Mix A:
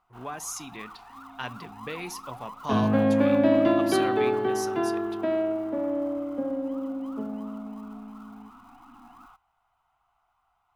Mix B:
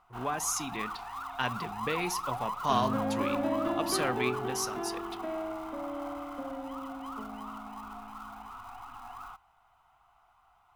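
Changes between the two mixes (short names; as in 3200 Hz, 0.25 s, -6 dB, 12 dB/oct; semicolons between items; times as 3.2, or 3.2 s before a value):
speech +3.5 dB; first sound +7.0 dB; second sound -10.5 dB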